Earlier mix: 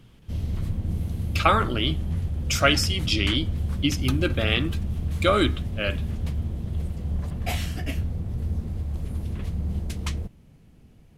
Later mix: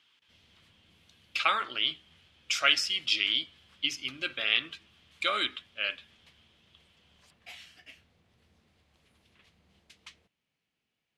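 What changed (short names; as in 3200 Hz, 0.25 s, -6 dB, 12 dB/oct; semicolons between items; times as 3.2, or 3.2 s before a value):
background -11.5 dB; master: add band-pass 3000 Hz, Q 1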